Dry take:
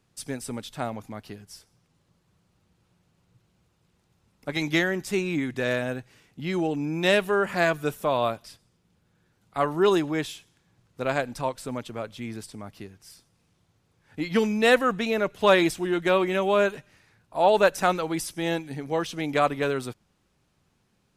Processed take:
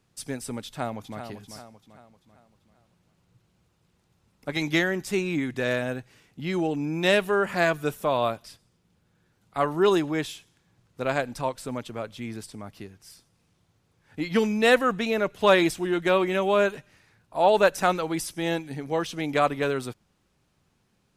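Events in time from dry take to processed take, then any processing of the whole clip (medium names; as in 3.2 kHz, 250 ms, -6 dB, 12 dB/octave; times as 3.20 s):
0.65–1.20 s: echo throw 390 ms, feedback 45%, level -9 dB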